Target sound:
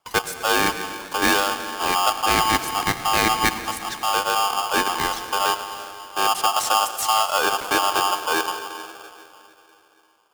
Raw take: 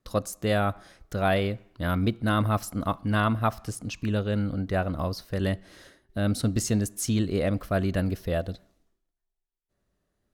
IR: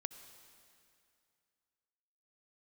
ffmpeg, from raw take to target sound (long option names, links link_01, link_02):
-filter_complex "[1:a]atrim=start_sample=2205,asetrate=34398,aresample=44100[link_01];[0:a][link_01]afir=irnorm=-1:irlink=0,aeval=exprs='val(0)*sgn(sin(2*PI*990*n/s))':channel_layout=same,volume=6dB"